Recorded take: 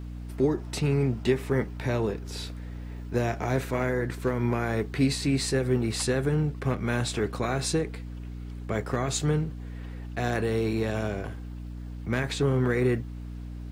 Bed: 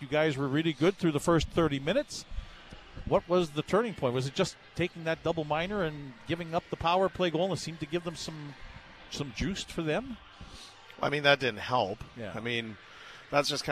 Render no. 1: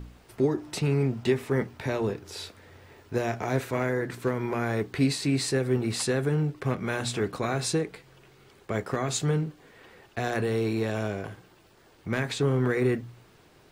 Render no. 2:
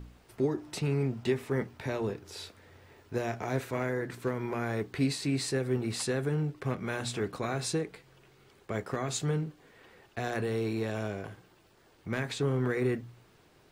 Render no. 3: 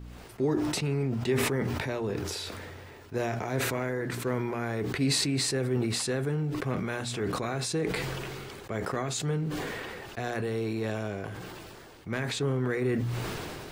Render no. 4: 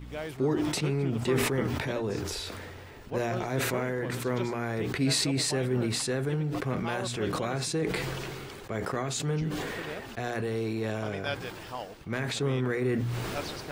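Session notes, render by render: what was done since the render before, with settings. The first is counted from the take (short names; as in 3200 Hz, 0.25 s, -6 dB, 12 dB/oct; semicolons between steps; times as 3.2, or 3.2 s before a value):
de-hum 60 Hz, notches 5
gain -4.5 dB
sustainer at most 21 dB/s
add bed -10.5 dB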